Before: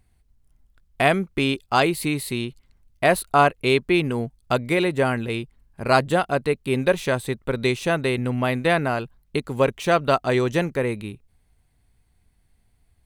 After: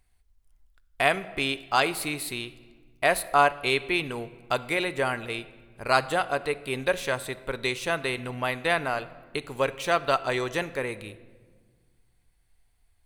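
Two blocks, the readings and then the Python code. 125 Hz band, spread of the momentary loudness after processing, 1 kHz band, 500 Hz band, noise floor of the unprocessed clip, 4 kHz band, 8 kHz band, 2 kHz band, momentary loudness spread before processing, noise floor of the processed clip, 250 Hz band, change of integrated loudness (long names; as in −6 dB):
−11.5 dB, 12 LU, −3.5 dB, −6.5 dB, −64 dBFS, −1.5 dB, −1.5 dB, −2.0 dB, 10 LU, −66 dBFS, −10.5 dB, −4.5 dB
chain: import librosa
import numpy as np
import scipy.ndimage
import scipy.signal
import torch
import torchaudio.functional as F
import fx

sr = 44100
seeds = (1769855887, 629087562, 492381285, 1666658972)

y = fx.peak_eq(x, sr, hz=170.0, db=-12.0, octaves=2.7)
y = fx.room_shoebox(y, sr, seeds[0], volume_m3=1600.0, walls='mixed', distance_m=0.36)
y = y * 10.0 ** (-1.5 / 20.0)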